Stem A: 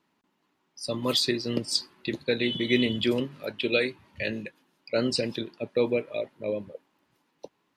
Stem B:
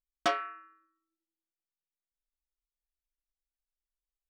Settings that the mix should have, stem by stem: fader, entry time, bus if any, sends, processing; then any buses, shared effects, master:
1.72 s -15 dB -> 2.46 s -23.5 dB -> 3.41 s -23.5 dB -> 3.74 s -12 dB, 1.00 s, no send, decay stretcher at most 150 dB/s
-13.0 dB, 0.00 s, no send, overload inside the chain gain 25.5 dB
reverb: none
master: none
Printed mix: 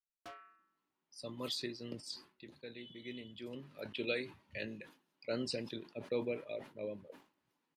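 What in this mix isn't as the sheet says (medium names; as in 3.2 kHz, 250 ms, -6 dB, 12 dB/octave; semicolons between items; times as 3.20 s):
stem A: entry 1.00 s -> 0.35 s; stem B -13.0 dB -> -20.0 dB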